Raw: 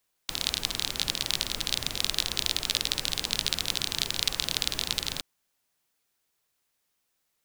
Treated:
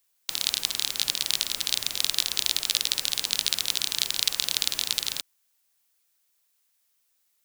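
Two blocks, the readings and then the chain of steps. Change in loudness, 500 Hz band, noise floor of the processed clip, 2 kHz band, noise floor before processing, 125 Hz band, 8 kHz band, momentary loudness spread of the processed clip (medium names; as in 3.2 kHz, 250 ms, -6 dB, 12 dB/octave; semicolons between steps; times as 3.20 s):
+3.0 dB, -5.0 dB, -71 dBFS, +0.5 dB, -77 dBFS, -10.5 dB, +4.5 dB, 2 LU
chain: tilt EQ +2.5 dB/octave; trim -2.5 dB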